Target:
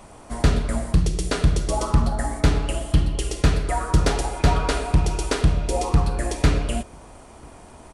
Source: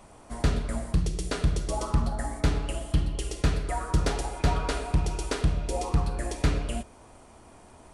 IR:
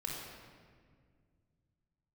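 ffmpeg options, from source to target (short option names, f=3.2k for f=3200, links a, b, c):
-filter_complex "[0:a]asplit=2[a][b];[b]adelay=991.3,volume=-30dB,highshelf=f=4k:g=-22.3[c];[a][c]amix=inputs=2:normalize=0,volume=6.5dB"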